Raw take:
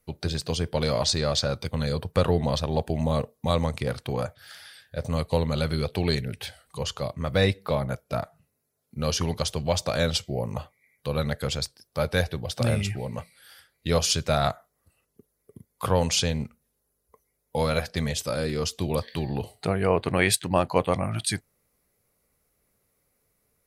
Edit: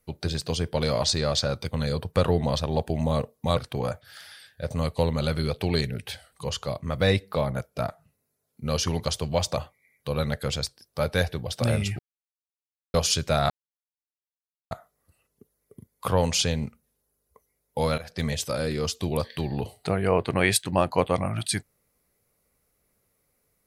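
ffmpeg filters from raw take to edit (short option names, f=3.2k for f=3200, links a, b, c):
-filter_complex "[0:a]asplit=7[a][b][c][d][e][f][g];[a]atrim=end=3.572[h];[b]atrim=start=3.908:end=9.912[i];[c]atrim=start=10.558:end=12.98,asetpts=PTS-STARTPTS,afade=t=out:st=2.418:d=0.004:c=hsin[j];[d]atrim=start=12.98:end=13.93,asetpts=PTS-STARTPTS,volume=0[k];[e]atrim=start=13.93:end=14.49,asetpts=PTS-STARTPTS,afade=t=in:d=0.004:c=hsin,afade=t=out:st=0.556:d=0.004:c=hsin,apad=pad_dur=1.21[l];[f]atrim=start=14.49:end=17.76,asetpts=PTS-STARTPTS,afade=t=in:d=0.004:c=hsin,afade=t=out:st=3.266:d=0.004:c=hsin:silence=0.0891251[m];[g]atrim=start=17.76,asetpts=PTS-STARTPTS,afade=t=in:d=0.26:silence=0.0891251[n];[h][i]acrossfade=d=0.004:c1=hsin:c2=hsin[o];[j][k][l][m][n]concat=n=5:v=0:a=1[p];[o][p]acrossfade=d=0.004:c1=hsin:c2=hsin"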